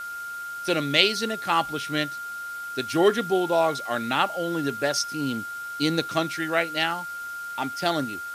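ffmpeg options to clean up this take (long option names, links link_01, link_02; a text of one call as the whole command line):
ffmpeg -i in.wav -af "bandreject=frequency=1400:width=30,afwtdn=0.0045" out.wav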